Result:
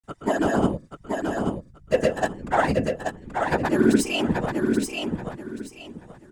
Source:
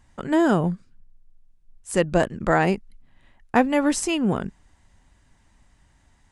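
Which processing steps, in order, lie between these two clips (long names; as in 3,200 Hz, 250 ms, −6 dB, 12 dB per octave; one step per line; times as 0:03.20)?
phase distortion by the signal itself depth 0.058 ms
high-shelf EQ 6,300 Hz +11 dB
in parallel at −5.5 dB: slack as between gear wheels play −24.5 dBFS
on the sum: stiff-string resonator 97 Hz, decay 0.27 s, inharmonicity 0.008
random phases in short frames
granular cloud 100 ms, spray 100 ms, pitch spread up and down by 0 semitones
on a send: repeating echo 831 ms, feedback 25%, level −4.5 dB
on the sum: level +4.5 dB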